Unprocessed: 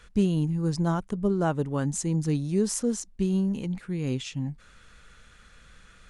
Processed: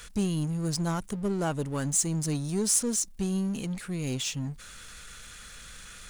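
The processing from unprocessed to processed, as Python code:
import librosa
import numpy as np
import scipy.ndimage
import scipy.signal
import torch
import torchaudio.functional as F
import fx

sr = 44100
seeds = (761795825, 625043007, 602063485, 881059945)

y = scipy.signal.lfilter([1.0, -0.8], [1.0], x)
y = fx.power_curve(y, sr, exponent=0.7)
y = F.gain(torch.from_numpy(y), 3.5).numpy()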